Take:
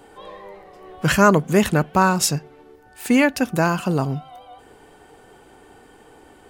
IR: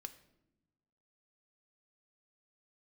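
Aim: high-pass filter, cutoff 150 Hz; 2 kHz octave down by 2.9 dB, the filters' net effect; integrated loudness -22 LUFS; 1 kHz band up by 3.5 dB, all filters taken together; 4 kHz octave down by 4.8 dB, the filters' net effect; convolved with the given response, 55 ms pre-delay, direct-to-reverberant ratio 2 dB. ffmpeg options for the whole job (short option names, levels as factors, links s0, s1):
-filter_complex "[0:a]highpass=150,equalizer=f=1000:t=o:g=6,equalizer=f=2000:t=o:g=-6.5,equalizer=f=4000:t=o:g=-5.5,asplit=2[s0][s1];[1:a]atrim=start_sample=2205,adelay=55[s2];[s1][s2]afir=irnorm=-1:irlink=0,volume=1.41[s3];[s0][s3]amix=inputs=2:normalize=0,volume=0.531"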